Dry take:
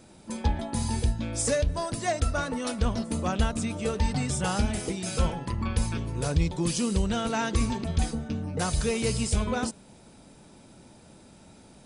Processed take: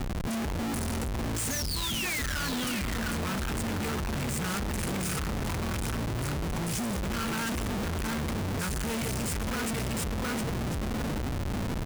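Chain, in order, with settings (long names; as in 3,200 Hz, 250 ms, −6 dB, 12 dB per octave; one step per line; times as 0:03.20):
in parallel at +3 dB: downward compressor, threshold −36 dBFS, peak gain reduction 17.5 dB
on the sum: phaser with its sweep stopped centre 1,600 Hz, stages 4
sound drawn into the spectrogram fall, 0:01.50–0:02.40, 1,400–6,700 Hz −31 dBFS
repeating echo 709 ms, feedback 30%, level −6.5 dB
comparator with hysteresis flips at −42 dBFS
level −4 dB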